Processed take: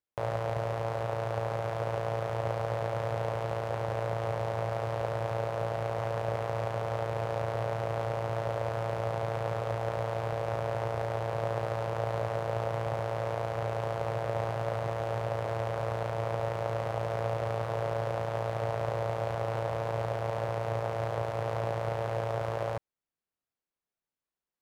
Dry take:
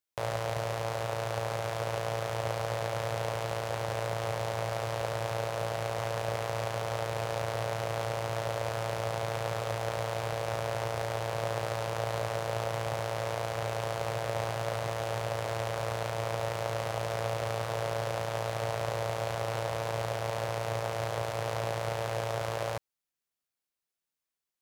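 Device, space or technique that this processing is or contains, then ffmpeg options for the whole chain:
through cloth: -af "highshelf=frequency=2500:gain=-15,volume=2dB"

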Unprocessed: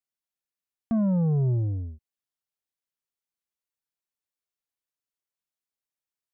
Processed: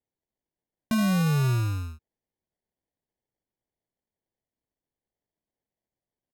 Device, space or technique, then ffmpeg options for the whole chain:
crushed at another speed: -af "asetrate=55125,aresample=44100,acrusher=samples=27:mix=1:aa=0.000001,asetrate=35280,aresample=44100"

